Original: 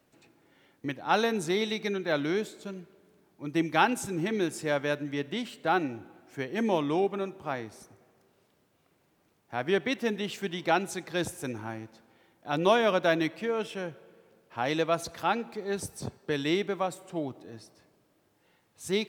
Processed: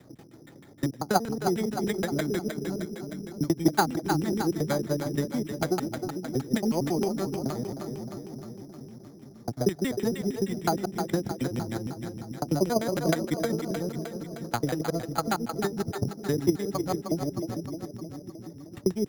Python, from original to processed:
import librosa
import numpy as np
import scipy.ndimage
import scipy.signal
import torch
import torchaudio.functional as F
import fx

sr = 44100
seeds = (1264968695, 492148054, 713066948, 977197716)

p1 = fx.local_reverse(x, sr, ms=92.0)
p2 = fx.graphic_eq_10(p1, sr, hz=(125, 500, 1000, 2000, 4000), db=(5, -4, -9, 12, -6))
p3 = fx.level_steps(p2, sr, step_db=24)
p4 = p2 + (p3 * librosa.db_to_amplitude(-2.0))
p5 = fx.transient(p4, sr, attack_db=7, sustain_db=-6)
p6 = fx.band_shelf(p5, sr, hz=2100.0, db=-11.0, octaves=1.2)
p7 = fx.filter_lfo_lowpass(p6, sr, shape='saw_down', hz=6.4, low_hz=230.0, high_hz=2800.0, q=1.2)
p8 = p7 + fx.echo_split(p7, sr, split_hz=320.0, low_ms=449, high_ms=309, feedback_pct=52, wet_db=-8.0, dry=0)
p9 = np.repeat(p8[::8], 8)[:len(p8)]
y = fx.band_squash(p9, sr, depth_pct=40)